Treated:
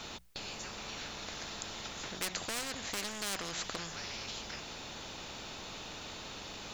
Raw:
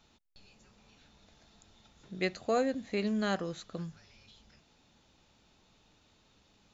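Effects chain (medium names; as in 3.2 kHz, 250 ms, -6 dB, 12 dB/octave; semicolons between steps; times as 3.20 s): hum notches 60/120/180 Hz; in parallel at 0 dB: compression, threshold -42 dBFS, peak gain reduction 15.5 dB; on the sum: overload inside the chain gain 28.5 dB; spectrum-flattening compressor 4:1; trim +10 dB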